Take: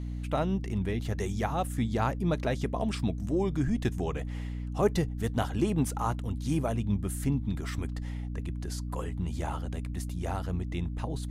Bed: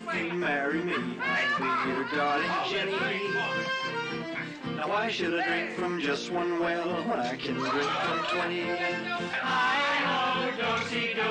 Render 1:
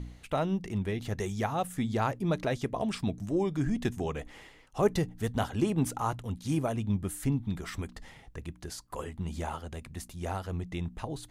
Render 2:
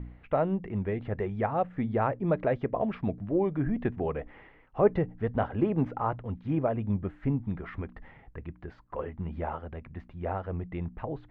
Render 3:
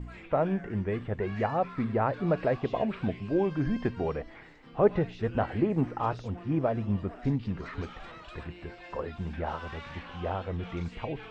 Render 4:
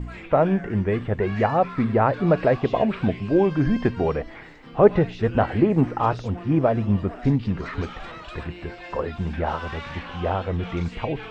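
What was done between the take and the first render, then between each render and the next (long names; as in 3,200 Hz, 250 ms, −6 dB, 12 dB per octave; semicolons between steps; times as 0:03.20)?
hum removal 60 Hz, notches 5
low-pass filter 2,200 Hz 24 dB per octave; dynamic equaliser 540 Hz, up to +6 dB, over −46 dBFS, Q 1.7
mix in bed −18.5 dB
level +8 dB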